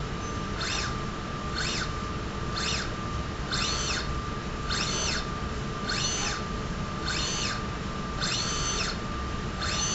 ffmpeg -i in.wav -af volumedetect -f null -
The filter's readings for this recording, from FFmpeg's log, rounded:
mean_volume: -30.5 dB
max_volume: -14.4 dB